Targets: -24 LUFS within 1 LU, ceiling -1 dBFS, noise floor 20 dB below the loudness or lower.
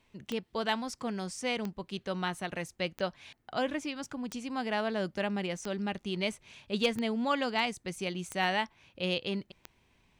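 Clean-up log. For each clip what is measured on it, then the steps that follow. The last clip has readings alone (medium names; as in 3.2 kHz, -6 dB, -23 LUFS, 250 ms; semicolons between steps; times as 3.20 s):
clicks found 8; loudness -34.0 LUFS; peak level -16.5 dBFS; loudness target -24.0 LUFS
-> de-click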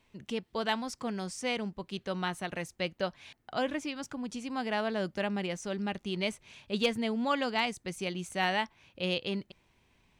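clicks found 0; loudness -34.0 LUFS; peak level -16.5 dBFS; loudness target -24.0 LUFS
-> trim +10 dB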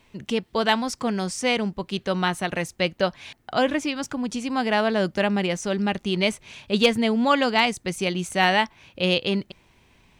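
loudness -24.0 LUFS; peak level -6.5 dBFS; noise floor -61 dBFS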